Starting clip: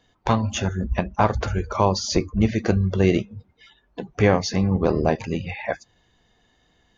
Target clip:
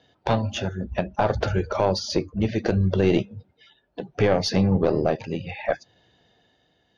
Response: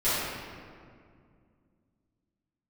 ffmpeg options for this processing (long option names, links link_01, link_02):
-af "tremolo=f=0.66:d=0.48,highpass=100,equalizer=frequency=220:width_type=q:width=4:gain=-4,equalizer=frequency=590:width_type=q:width=4:gain=4,equalizer=frequency=1100:width_type=q:width=4:gain=-9,equalizer=frequency=2100:width_type=q:width=4:gain=-5,lowpass=frequency=5300:width=0.5412,lowpass=frequency=5300:width=1.3066,aeval=exprs='0.562*(cos(1*acos(clip(val(0)/0.562,-1,1)))-cos(1*PI/2))+0.0501*(cos(4*acos(clip(val(0)/0.562,-1,1)))-cos(4*PI/2))':channel_layout=same,alimiter=level_in=12.5dB:limit=-1dB:release=50:level=0:latency=1,volume=-8.5dB"